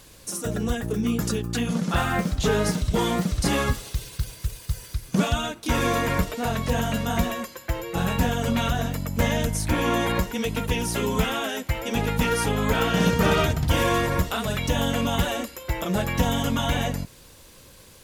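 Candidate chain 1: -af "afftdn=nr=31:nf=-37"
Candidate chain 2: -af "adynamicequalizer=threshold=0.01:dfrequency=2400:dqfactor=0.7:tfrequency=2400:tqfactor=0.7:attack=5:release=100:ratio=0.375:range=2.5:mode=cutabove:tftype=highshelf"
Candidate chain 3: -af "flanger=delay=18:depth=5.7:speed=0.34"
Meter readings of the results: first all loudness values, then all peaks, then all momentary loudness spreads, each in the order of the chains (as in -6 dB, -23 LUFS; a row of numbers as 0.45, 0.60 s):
-25.5, -25.5, -28.0 LUFS; -7.5, -7.5, -11.0 dBFS; 9, 9, 9 LU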